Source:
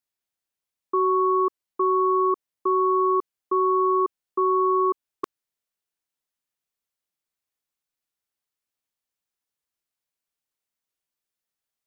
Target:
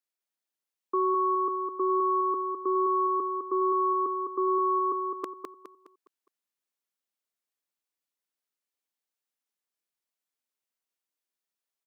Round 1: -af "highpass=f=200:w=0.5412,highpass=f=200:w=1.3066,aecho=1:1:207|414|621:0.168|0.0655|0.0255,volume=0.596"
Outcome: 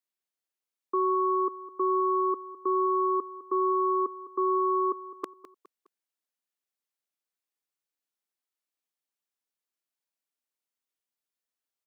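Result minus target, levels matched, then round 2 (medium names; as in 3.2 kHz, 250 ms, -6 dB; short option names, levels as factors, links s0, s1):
echo-to-direct -10.5 dB
-af "highpass=f=200:w=0.5412,highpass=f=200:w=1.3066,aecho=1:1:207|414|621|828|1035:0.562|0.219|0.0855|0.0334|0.013,volume=0.596"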